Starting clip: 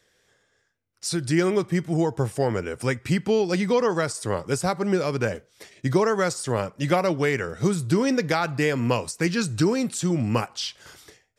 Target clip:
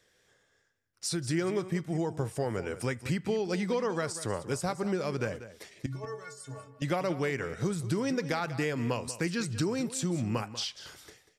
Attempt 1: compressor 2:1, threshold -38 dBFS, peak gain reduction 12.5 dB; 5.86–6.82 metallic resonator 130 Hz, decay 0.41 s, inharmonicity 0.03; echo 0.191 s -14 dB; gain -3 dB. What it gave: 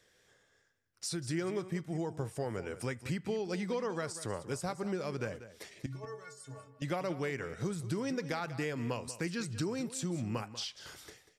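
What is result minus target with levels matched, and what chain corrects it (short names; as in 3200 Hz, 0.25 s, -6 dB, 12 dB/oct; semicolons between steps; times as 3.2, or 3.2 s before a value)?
compressor: peak gain reduction +5 dB
compressor 2:1, threshold -28 dBFS, peak gain reduction 7.5 dB; 5.86–6.82 metallic resonator 130 Hz, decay 0.41 s, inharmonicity 0.03; echo 0.191 s -14 dB; gain -3 dB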